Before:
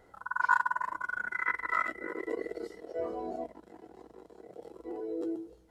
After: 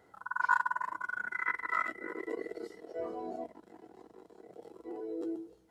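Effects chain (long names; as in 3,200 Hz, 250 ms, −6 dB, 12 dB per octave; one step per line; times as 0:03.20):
high-pass filter 99 Hz 12 dB per octave
parametric band 540 Hz −4.5 dB 0.25 octaves
level −2 dB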